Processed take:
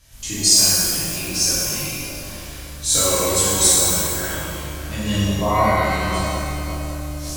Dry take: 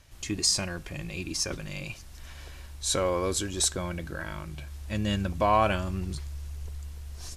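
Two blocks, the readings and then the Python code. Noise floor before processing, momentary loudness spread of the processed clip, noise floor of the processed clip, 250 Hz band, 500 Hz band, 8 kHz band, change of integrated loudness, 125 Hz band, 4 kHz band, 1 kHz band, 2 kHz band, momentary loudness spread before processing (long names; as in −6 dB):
−46 dBFS, 16 LU, −34 dBFS, +8.0 dB, +7.0 dB, +15.0 dB, +11.5 dB, +8.0 dB, +12.0 dB, +7.5 dB, +10.0 dB, 17 LU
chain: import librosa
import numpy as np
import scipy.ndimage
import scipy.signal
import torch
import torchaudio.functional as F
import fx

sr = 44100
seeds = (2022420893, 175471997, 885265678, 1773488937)

p1 = fx.spec_erase(x, sr, start_s=5.15, length_s=0.67, low_hz=1300.0, high_hz=9900.0)
p2 = fx.high_shelf(p1, sr, hz=4300.0, db=11.5)
p3 = p2 + fx.echo_banded(p2, sr, ms=560, feedback_pct=40, hz=530.0, wet_db=-8, dry=0)
p4 = fx.rev_shimmer(p3, sr, seeds[0], rt60_s=1.8, semitones=12, shimmer_db=-8, drr_db=-10.0)
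y = p4 * 10.0 ** (-4.5 / 20.0)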